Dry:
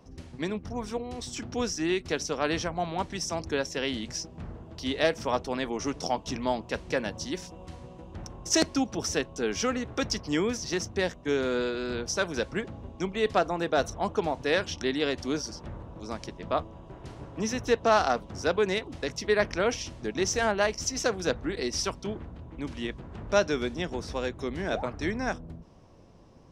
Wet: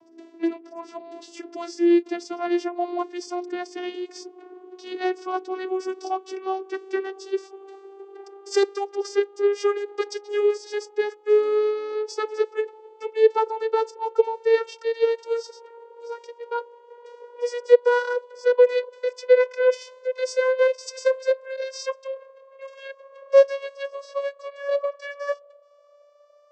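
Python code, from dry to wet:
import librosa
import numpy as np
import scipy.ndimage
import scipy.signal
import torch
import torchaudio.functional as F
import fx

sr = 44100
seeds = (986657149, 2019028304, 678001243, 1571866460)

y = fx.vocoder_glide(x, sr, note=64, semitones=10)
y = y * 10.0 ** (6.5 / 20.0)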